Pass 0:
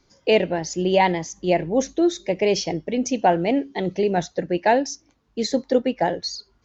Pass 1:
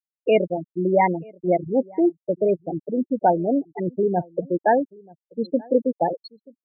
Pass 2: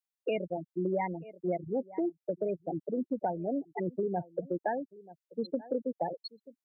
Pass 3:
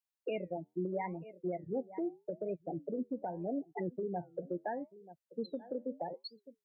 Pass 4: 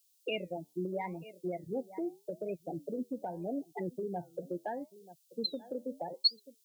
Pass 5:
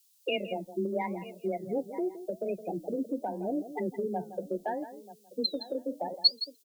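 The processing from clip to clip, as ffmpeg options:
-filter_complex "[0:a]acrossover=split=3200[a][b];[b]acompressor=threshold=-38dB:ratio=4:attack=1:release=60[c];[a][c]amix=inputs=2:normalize=0,afftfilt=real='re*gte(hypot(re,im),0.251)':imag='im*gte(hypot(re,im),0.251)':win_size=1024:overlap=0.75,asplit=2[d][e];[e]adelay=932.9,volume=-25dB,highshelf=f=4k:g=-21[f];[d][f]amix=inputs=2:normalize=0"
-filter_complex "[0:a]lowshelf=f=480:g=-8.5,acrossover=split=180[a][b];[b]acompressor=threshold=-30dB:ratio=6[c];[a][c]amix=inputs=2:normalize=0"
-af "alimiter=level_in=1dB:limit=-24dB:level=0:latency=1:release=193,volume=-1dB,flanger=delay=5.1:depth=7.4:regen=-78:speed=0.79:shape=triangular,volume=1.5dB"
-af "aexciter=amount=11.7:drive=3.3:freq=2.8k"
-af "aecho=1:1:166:0.224,afreqshift=17,volume=4.5dB"

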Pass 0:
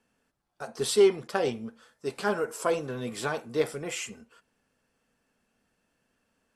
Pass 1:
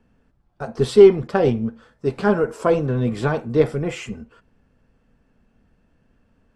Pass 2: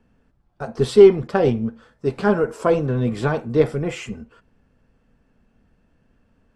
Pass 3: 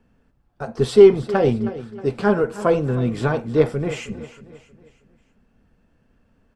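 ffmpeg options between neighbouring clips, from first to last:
-af "aemphasis=mode=reproduction:type=riaa,volume=6.5dB"
-af anull
-af "aecho=1:1:316|632|948|1264:0.168|0.0739|0.0325|0.0143"

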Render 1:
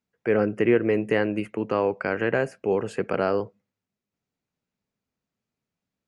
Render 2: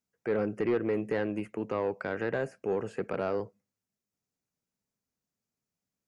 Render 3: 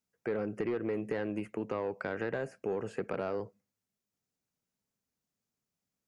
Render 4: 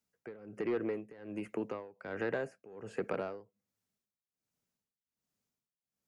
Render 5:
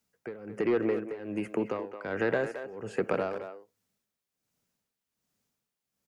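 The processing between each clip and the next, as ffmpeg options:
-filter_complex "[0:a]highshelf=f=4.6k:t=q:w=1.5:g=6,acrossover=split=3200[a][b];[b]acompressor=threshold=-53dB:ratio=4:attack=1:release=60[c];[a][c]amix=inputs=2:normalize=0,asoftclip=type=tanh:threshold=-15dB,volume=-5.5dB"
-af "acompressor=threshold=-30dB:ratio=6"
-filter_complex "[0:a]tremolo=f=1.3:d=0.91,acrossover=split=190[a][b];[a]alimiter=level_in=23dB:limit=-24dB:level=0:latency=1:release=401,volume=-23dB[c];[c][b]amix=inputs=2:normalize=0,volume=1dB"
-filter_complex "[0:a]asplit=2[a][b];[b]adelay=220,highpass=300,lowpass=3.4k,asoftclip=type=hard:threshold=-30dB,volume=-9dB[c];[a][c]amix=inputs=2:normalize=0,volume=7dB"

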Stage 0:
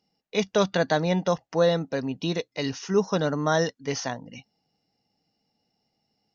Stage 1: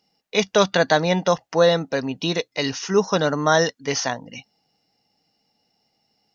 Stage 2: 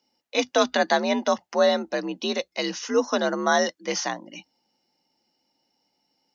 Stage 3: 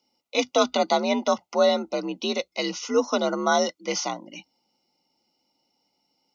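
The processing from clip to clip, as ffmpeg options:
-af "lowshelf=f=460:g=-7,volume=8dB"
-af "afreqshift=58,volume=-3.5dB"
-af "asuperstop=centerf=1700:order=20:qfactor=3.9"

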